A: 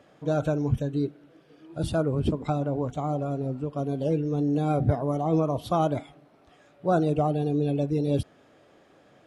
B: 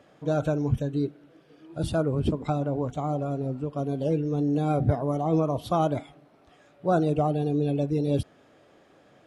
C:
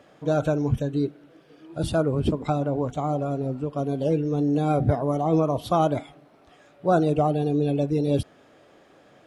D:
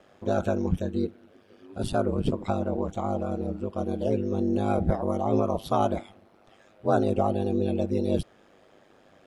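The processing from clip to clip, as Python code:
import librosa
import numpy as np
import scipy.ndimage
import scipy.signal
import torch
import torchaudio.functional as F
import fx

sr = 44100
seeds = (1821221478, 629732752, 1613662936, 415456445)

y1 = x
y2 = fx.peak_eq(y1, sr, hz=94.0, db=-2.5, octaves=2.9)
y2 = F.gain(torch.from_numpy(y2), 3.5).numpy()
y3 = y2 * np.sin(2.0 * np.pi * 50.0 * np.arange(len(y2)) / sr)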